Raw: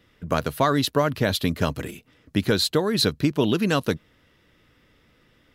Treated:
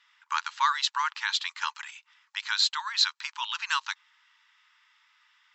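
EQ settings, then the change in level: brick-wall FIR band-pass 840–7800 Hz; 0.0 dB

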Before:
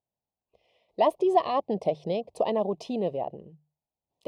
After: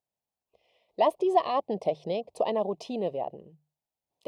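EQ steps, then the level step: low shelf 270 Hz -6 dB; 0.0 dB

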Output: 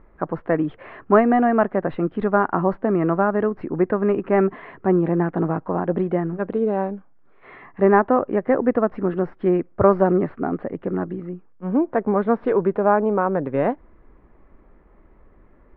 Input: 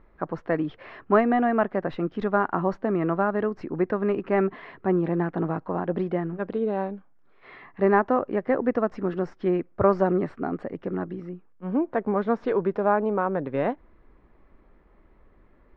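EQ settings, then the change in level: Gaussian blur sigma 2.9 samples; +5.0 dB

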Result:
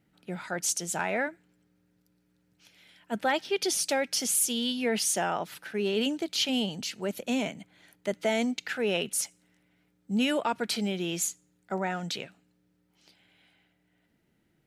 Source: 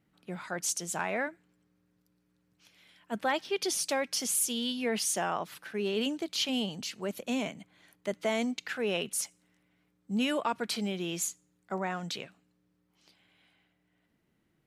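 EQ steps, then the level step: notch 1100 Hz, Q 6.6; +3.0 dB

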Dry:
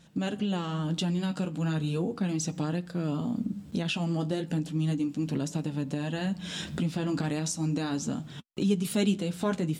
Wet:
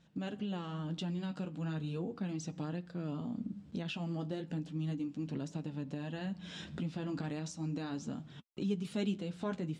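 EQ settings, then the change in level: air absorption 86 m; -8.5 dB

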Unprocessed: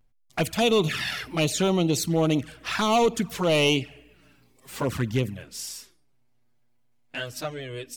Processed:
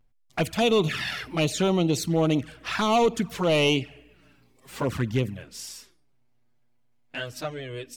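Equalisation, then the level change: high shelf 5800 Hz -6 dB; 0.0 dB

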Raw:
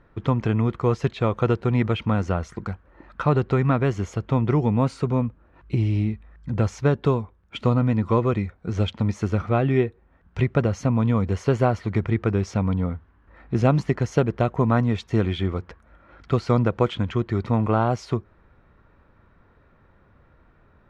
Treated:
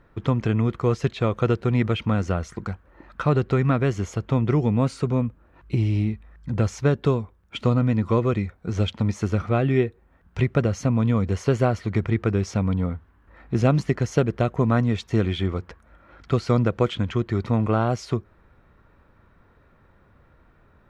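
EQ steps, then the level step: dynamic EQ 900 Hz, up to -5 dB, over -39 dBFS, Q 2.6; high shelf 5900 Hz +6.5 dB; 0.0 dB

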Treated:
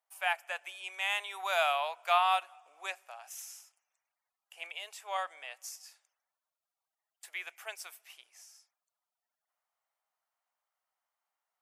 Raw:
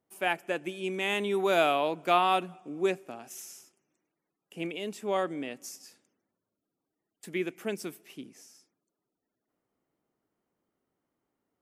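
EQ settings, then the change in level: steep high-pass 700 Hz 36 dB/oct; -1.0 dB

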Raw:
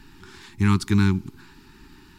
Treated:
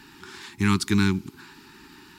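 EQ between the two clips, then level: HPF 310 Hz 6 dB/oct; dynamic EQ 870 Hz, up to -5 dB, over -43 dBFS, Q 0.75; +4.5 dB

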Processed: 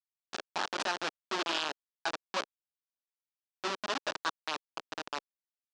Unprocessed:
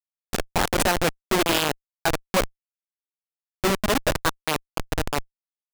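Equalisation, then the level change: speaker cabinet 470–5800 Hz, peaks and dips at 490 Hz -9 dB, 710 Hz -4 dB, 2100 Hz -6 dB; -7.5 dB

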